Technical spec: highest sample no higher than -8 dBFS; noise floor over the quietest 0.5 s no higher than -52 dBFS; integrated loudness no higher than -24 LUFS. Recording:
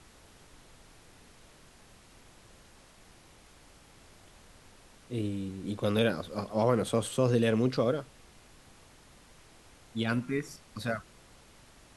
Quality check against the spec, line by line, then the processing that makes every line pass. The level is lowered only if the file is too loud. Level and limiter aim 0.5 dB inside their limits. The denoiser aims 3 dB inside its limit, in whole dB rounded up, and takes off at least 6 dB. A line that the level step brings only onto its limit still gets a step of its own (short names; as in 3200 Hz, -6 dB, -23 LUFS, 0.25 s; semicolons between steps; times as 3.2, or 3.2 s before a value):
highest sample -12.5 dBFS: OK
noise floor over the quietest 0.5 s -57 dBFS: OK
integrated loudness -31.0 LUFS: OK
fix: none